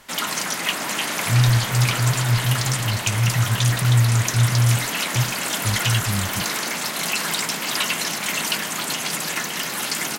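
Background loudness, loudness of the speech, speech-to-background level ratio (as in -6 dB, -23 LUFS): -23.0 LUFS, -22.0 LUFS, 1.0 dB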